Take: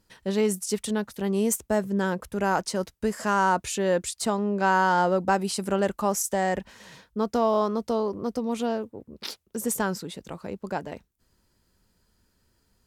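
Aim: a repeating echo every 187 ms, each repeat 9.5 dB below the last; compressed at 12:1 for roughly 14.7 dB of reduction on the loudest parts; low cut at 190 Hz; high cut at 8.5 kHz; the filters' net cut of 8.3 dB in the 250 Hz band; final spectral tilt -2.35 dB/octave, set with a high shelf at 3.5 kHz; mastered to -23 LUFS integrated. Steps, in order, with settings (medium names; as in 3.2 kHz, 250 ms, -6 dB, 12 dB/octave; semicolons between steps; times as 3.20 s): high-pass 190 Hz; low-pass 8.5 kHz; peaking EQ 250 Hz -8.5 dB; treble shelf 3.5 kHz +7 dB; compression 12:1, threshold -32 dBFS; feedback delay 187 ms, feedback 33%, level -9.5 dB; trim +13.5 dB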